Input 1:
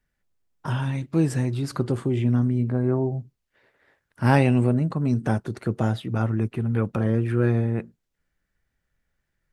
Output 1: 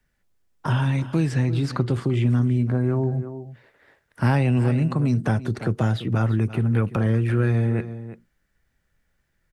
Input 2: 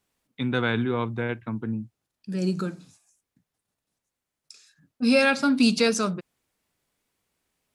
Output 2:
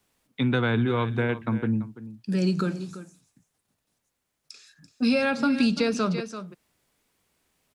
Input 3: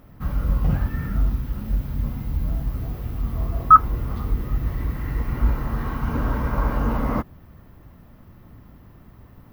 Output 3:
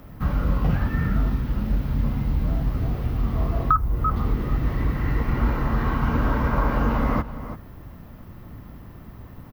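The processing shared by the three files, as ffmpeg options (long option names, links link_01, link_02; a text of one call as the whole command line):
ffmpeg -i in.wav -filter_complex "[0:a]aecho=1:1:337:0.15,acrossover=split=140|1400|5400[link_01][link_02][link_03][link_04];[link_01]acompressor=threshold=-26dB:ratio=4[link_05];[link_02]acompressor=threshold=-29dB:ratio=4[link_06];[link_03]acompressor=threshold=-38dB:ratio=4[link_07];[link_04]acompressor=threshold=-60dB:ratio=4[link_08];[link_05][link_06][link_07][link_08]amix=inputs=4:normalize=0,volume=5.5dB" out.wav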